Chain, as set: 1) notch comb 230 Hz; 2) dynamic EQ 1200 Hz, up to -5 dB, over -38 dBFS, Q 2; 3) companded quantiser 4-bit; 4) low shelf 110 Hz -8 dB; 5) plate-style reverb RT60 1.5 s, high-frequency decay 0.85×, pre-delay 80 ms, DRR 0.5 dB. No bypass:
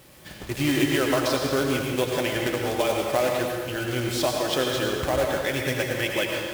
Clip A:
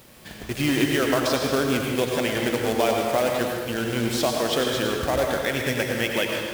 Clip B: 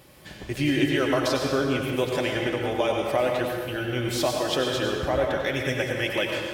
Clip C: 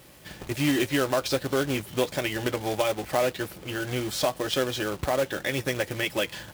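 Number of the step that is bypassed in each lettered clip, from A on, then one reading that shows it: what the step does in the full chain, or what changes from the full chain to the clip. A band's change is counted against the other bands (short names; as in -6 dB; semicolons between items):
1, loudness change +1.5 LU; 3, distortion -13 dB; 5, loudness change -2.5 LU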